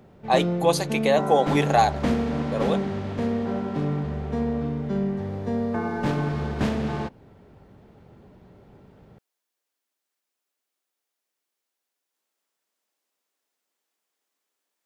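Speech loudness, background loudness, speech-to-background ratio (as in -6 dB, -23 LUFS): -23.5 LUFS, -27.0 LUFS, 3.5 dB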